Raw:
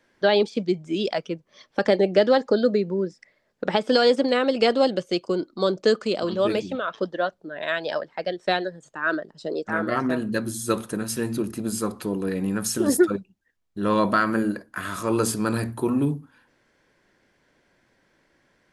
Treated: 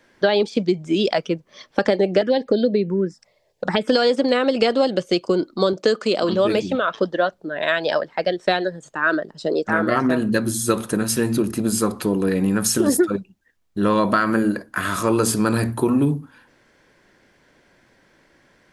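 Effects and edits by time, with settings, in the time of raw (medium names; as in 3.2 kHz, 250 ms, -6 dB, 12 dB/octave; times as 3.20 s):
2.21–3.88 s: touch-sensitive phaser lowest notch 220 Hz, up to 1.3 kHz, full sweep at -17 dBFS
5.73–6.29 s: high-pass 210 Hz 6 dB/octave
whole clip: compression 4:1, threshold -22 dBFS; trim +7.5 dB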